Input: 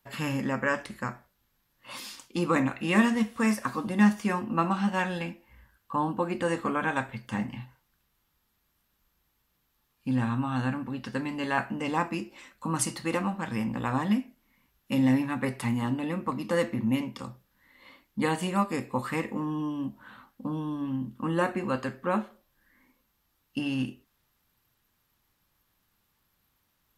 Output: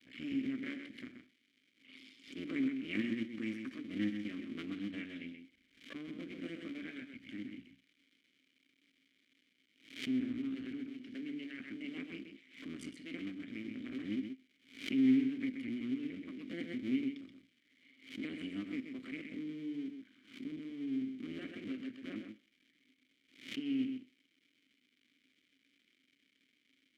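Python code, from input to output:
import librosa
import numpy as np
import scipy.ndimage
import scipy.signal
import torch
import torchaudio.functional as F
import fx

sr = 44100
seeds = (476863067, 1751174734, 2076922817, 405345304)

p1 = fx.cycle_switch(x, sr, every=2, mode='muted')
p2 = fx.dmg_crackle(p1, sr, seeds[0], per_s=300.0, level_db=-41.0)
p3 = fx.vowel_filter(p2, sr, vowel='i')
p4 = p3 + fx.echo_single(p3, sr, ms=129, db=-7.0, dry=0)
y = fx.pre_swell(p4, sr, db_per_s=120.0)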